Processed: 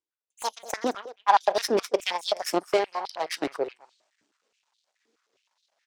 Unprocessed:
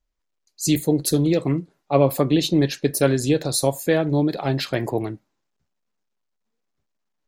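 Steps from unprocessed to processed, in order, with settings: speed glide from 158% -> 90%; Bessel low-pass 6100 Hz, order 8; high shelf 2900 Hz +10 dB; reverse; upward compressor, threshold -32 dBFS; reverse; soft clip -8.5 dBFS, distortion -19 dB; added harmonics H 3 -12 dB, 4 -19 dB, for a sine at -8.5 dBFS; in parallel at -12 dB: backlash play -28 dBFS; on the sum: echo 0.212 s -18.5 dB; stepped high-pass 9.5 Hz 310–3800 Hz; gain -6 dB

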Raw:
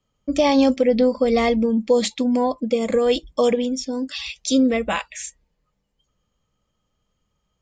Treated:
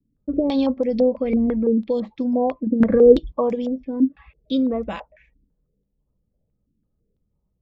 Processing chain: in parallel at 0 dB: compressor, threshold -25 dBFS, peak gain reduction 12 dB; 2.8–3.32 on the sum: low shelf 470 Hz +10 dB; low-pass opened by the level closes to 490 Hz, open at -11 dBFS; tilt shelf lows +6.5 dB, about 750 Hz; stepped low-pass 6 Hz 280–5800 Hz; gain -10.5 dB

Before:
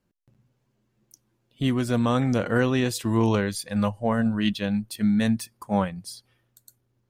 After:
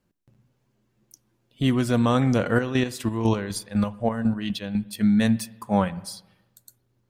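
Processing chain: 2.5–4.93 chopper 4 Hz, depth 60%, duty 35%; spring tank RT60 1 s, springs 53/60 ms, chirp 70 ms, DRR 18 dB; gain +2 dB

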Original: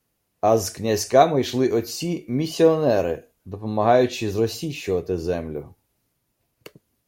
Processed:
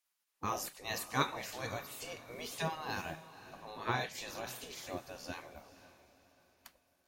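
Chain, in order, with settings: spectral gate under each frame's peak -15 dB weak; diffused feedback echo 0.513 s, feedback 40%, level -15 dB; gain -6 dB

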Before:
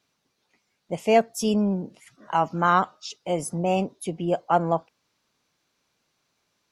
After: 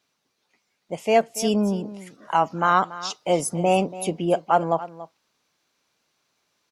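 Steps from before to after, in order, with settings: low shelf 200 Hz -7.5 dB; vocal rider within 3 dB 0.5 s; on a send: echo 0.284 s -16 dB; on the sum: gain +3.5 dB

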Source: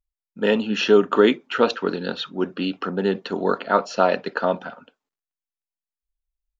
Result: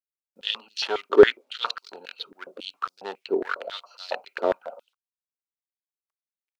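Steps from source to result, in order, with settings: Wiener smoothing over 25 samples; dynamic EQ 4300 Hz, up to +6 dB, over -45 dBFS, Q 1.6; requantised 12-bit, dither none; stepped high-pass 7.3 Hz 390–4800 Hz; gain -5.5 dB

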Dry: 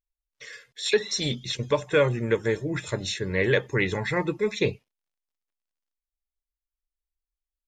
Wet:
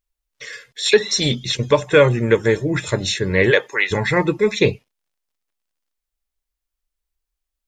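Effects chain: 3.5–3.9 HPF 350 Hz -> 1200 Hz 12 dB/oct; gain +8.5 dB

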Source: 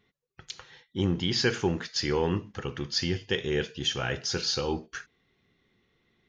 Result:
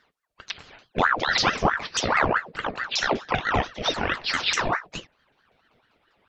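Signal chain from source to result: repeated pitch sweeps -9 st, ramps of 0.197 s; ring modulator with a swept carrier 1000 Hz, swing 70%, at 4.6 Hz; gain +8.5 dB

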